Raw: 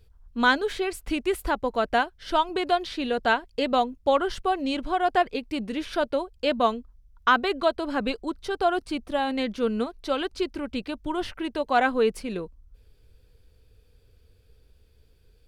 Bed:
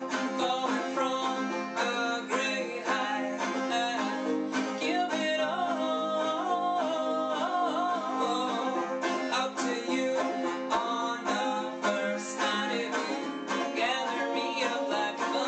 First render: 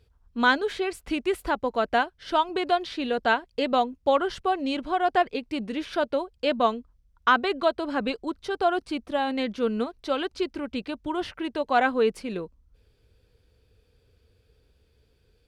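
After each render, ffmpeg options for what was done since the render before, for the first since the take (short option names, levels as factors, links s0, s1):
-af "highpass=f=86:p=1,highshelf=f=9900:g=-10.5"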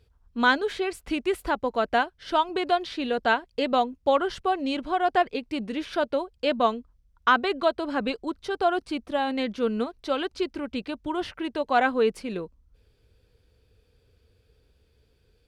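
-af anull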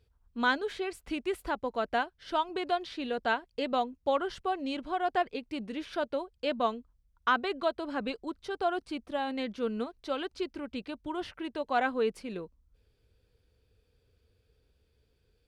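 -af "volume=0.473"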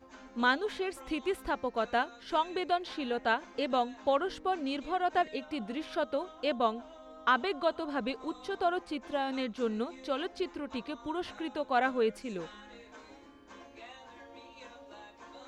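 -filter_complex "[1:a]volume=0.0891[s0];[0:a][s0]amix=inputs=2:normalize=0"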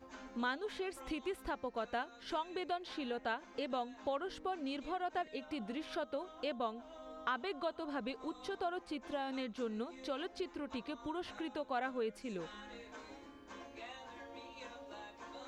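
-af "acompressor=threshold=0.00794:ratio=2"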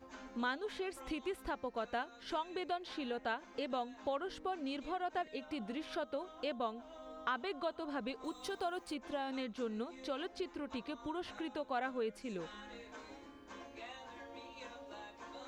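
-filter_complex "[0:a]asettb=1/sr,asplit=3[s0][s1][s2];[s0]atrim=end=8.244[s3];[s1]atrim=start=8.24:end=8.94,asetpts=PTS-STARTPTS,afade=t=in:d=0.004:c=qsin,afade=t=out:st=0.696:d=0.004:c=qsin,aemphasis=mode=production:type=50fm[s4];[s2]atrim=start=8.936[s5];[s3][s4]acrossfade=d=0.004:c1=hsin:c2=qsin[s6];[s6][s5]acrossfade=d=0.004:c1=qsin:c2=hsin"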